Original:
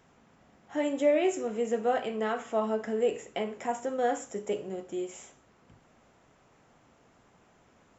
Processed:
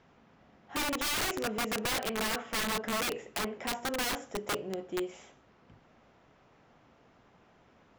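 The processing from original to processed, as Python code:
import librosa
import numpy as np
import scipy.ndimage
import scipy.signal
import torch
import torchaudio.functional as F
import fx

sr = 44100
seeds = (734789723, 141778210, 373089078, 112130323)

y = scipy.signal.sosfilt(scipy.signal.butter(4, 5300.0, 'lowpass', fs=sr, output='sos'), x)
y = (np.mod(10.0 ** (26.5 / 20.0) * y + 1.0, 2.0) - 1.0) / 10.0 ** (26.5 / 20.0)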